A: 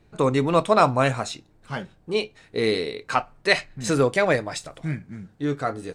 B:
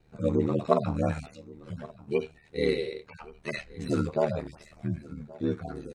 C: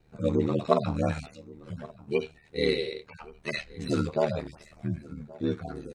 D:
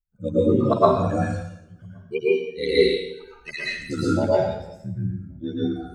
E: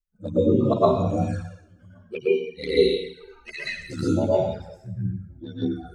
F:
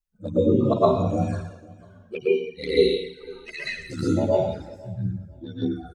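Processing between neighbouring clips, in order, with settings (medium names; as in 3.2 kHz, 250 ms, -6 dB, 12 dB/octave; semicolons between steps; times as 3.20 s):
harmonic-percussive separation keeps harmonic; delay 1124 ms -21.5 dB; ring modulator 38 Hz
dynamic bell 3.9 kHz, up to +6 dB, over -52 dBFS, Q 0.9
expander on every frequency bin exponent 2; plate-style reverb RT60 0.84 s, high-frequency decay 0.85×, pre-delay 100 ms, DRR -8.5 dB; trim +1.5 dB
touch-sensitive flanger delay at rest 4.7 ms, full sweep at -18.5 dBFS
feedback delay 497 ms, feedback 22%, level -23 dB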